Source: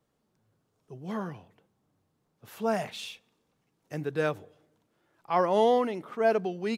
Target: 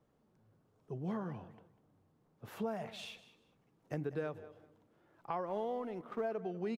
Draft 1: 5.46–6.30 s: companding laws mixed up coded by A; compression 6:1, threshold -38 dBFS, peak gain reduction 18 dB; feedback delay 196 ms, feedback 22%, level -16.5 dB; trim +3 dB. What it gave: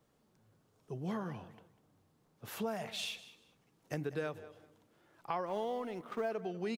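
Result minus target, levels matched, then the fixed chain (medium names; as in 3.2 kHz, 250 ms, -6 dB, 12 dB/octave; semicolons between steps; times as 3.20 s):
4 kHz band +7.5 dB
5.46–6.30 s: companding laws mixed up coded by A; compression 6:1, threshold -38 dBFS, peak gain reduction 18 dB; treble shelf 2.3 kHz -12 dB; feedback delay 196 ms, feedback 22%, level -16.5 dB; trim +3 dB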